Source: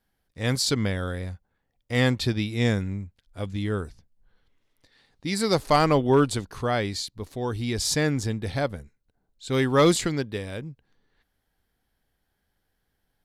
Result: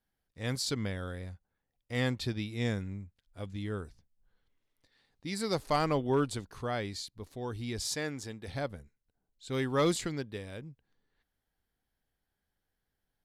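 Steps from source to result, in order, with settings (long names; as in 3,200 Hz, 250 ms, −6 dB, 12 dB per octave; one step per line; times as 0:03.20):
0:07.87–0:08.48: low-shelf EQ 210 Hz −11.5 dB
level −9 dB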